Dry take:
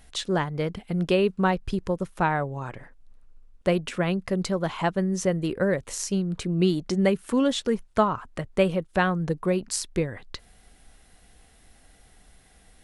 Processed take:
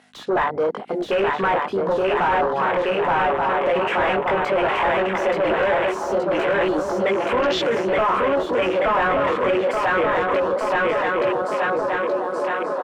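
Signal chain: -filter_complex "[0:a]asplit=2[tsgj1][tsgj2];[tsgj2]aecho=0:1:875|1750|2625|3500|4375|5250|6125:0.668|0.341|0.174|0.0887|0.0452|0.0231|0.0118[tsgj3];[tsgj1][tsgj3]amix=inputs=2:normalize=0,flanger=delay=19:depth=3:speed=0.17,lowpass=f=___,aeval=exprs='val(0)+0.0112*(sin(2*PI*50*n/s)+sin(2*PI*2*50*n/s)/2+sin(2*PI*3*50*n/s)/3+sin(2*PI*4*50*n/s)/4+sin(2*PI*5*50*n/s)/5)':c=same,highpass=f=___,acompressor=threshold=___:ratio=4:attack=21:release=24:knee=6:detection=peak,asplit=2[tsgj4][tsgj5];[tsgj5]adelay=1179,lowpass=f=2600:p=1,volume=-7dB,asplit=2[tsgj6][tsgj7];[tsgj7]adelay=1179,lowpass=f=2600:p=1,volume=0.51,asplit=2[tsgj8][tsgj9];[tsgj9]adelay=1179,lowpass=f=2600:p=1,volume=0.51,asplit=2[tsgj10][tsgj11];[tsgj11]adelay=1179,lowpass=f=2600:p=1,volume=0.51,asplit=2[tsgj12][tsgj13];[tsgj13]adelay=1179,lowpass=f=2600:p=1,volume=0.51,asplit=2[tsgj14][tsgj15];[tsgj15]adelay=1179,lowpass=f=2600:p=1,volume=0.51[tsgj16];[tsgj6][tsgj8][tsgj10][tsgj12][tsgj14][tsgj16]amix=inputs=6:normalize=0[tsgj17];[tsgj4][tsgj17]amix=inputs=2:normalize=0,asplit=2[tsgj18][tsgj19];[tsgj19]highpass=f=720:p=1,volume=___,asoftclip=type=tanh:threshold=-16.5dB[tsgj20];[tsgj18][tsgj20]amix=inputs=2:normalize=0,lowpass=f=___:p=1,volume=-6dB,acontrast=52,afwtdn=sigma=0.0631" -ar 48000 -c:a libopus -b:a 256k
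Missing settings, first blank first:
8900, 470, -38dB, 28dB, 2200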